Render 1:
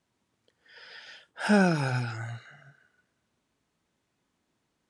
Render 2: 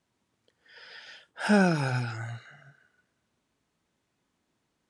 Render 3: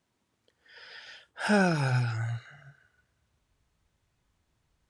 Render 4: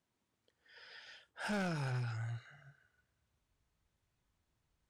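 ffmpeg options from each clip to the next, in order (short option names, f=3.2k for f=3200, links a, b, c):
-af anull
-af "asubboost=boost=11:cutoff=79"
-af "asoftclip=type=tanh:threshold=-26dB,volume=-7.5dB"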